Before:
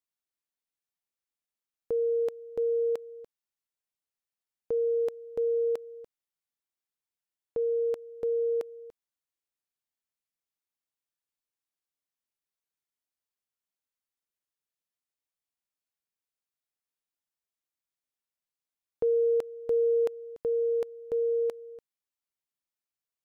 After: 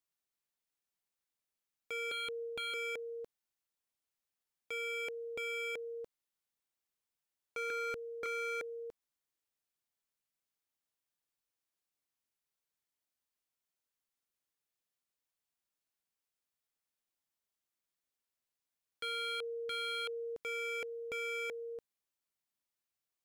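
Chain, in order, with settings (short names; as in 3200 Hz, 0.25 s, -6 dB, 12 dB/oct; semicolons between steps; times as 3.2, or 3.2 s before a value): 2.11–2.74 dynamic EQ 820 Hz, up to +4 dB, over -43 dBFS, Q 0.79; 7.7–8.26 HPF 260 Hz 12 dB/oct; wavefolder -35 dBFS; gain +1 dB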